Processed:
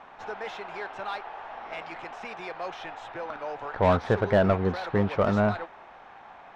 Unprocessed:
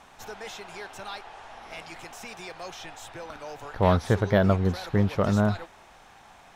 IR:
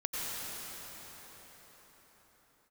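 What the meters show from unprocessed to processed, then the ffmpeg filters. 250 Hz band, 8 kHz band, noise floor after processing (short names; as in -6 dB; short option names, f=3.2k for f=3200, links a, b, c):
-2.0 dB, under -10 dB, -49 dBFS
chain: -filter_complex "[0:a]adynamicsmooth=sensitivity=7:basefreq=3.4k,asplit=2[a][b];[b]highpass=f=720:p=1,volume=17dB,asoftclip=type=tanh:threshold=-7dB[c];[a][c]amix=inputs=2:normalize=0,lowpass=f=1.3k:p=1,volume=-6dB,volume=-2.5dB"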